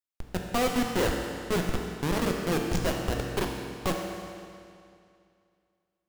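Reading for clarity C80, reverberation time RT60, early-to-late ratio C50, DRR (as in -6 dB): 4.0 dB, 2.4 s, 2.5 dB, 1.0 dB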